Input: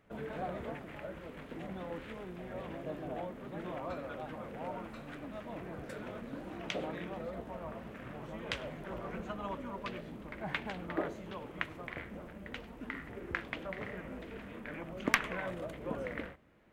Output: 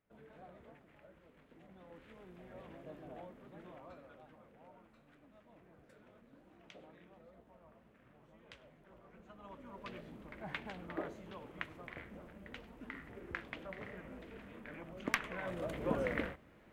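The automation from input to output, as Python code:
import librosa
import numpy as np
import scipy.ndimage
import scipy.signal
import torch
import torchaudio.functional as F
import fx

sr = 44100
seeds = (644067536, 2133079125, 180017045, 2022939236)

y = fx.gain(x, sr, db=fx.line((1.66, -17.0), (2.34, -10.0), (3.32, -10.0), (4.67, -19.0), (9.12, -19.0), (9.94, -6.0), (15.3, -6.0), (15.77, 3.5)))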